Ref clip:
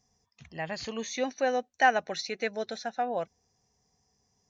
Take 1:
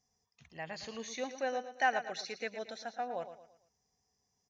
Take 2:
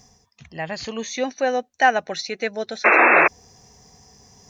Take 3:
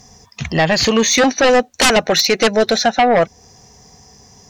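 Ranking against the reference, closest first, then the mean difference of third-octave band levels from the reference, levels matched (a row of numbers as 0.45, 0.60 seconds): 1, 2, 3; 3.0, 4.5, 7.0 decibels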